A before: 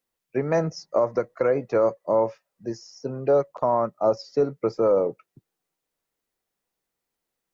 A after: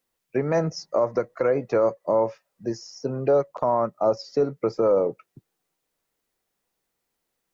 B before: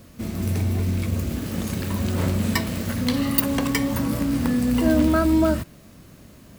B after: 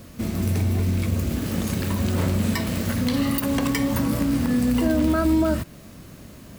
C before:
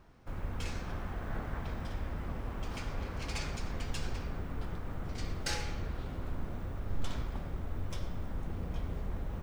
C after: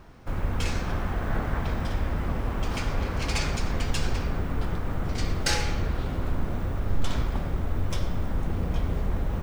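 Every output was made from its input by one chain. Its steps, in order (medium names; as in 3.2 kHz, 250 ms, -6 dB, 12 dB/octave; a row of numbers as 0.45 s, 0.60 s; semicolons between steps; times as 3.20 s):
in parallel at 0 dB: compression, threshold -28 dBFS; on the sum: loudness maximiser +9 dB; peak normalisation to -12 dBFS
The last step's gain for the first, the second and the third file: -11.0 dB, -11.0 dB, -5.0 dB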